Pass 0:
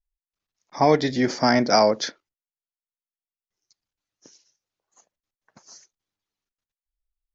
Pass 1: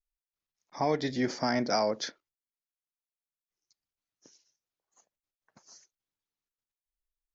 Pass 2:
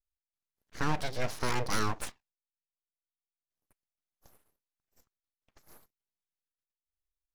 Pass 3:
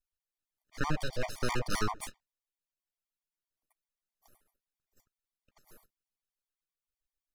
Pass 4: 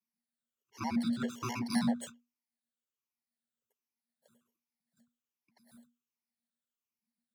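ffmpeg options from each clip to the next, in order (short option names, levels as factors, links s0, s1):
-af "alimiter=limit=0.316:level=0:latency=1:release=123,volume=0.422"
-af "aeval=exprs='abs(val(0))':c=same"
-af "afftfilt=real='re*gt(sin(2*PI*7.7*pts/sr)*(1-2*mod(floor(b*sr/1024/610),2)),0)':imag='im*gt(sin(2*PI*7.7*pts/sr)*(1-2*mod(floor(b*sr/1024/610),2)),0)':win_size=1024:overlap=0.75,volume=1.19"
-af "afftfilt=real='re*pow(10,15/40*sin(2*PI*(0.89*log(max(b,1)*sr/1024/100)/log(2)-(-1.3)*(pts-256)/sr)))':imag='im*pow(10,15/40*sin(2*PI*(0.89*log(max(b,1)*sr/1024/100)/log(2)-(-1.3)*(pts-256)/sr)))':win_size=1024:overlap=0.75,afreqshift=-240,highpass=f=110:w=0.5412,highpass=f=110:w=1.3066,volume=0.501"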